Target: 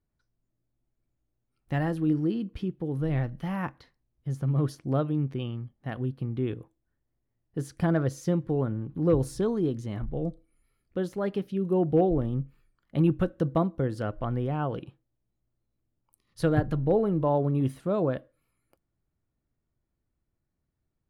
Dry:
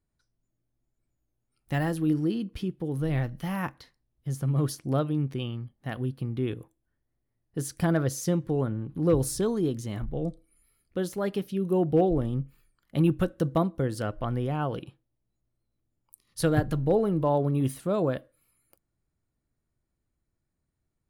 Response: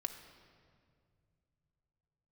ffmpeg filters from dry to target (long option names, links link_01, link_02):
-af "lowpass=frequency=2200:poles=1"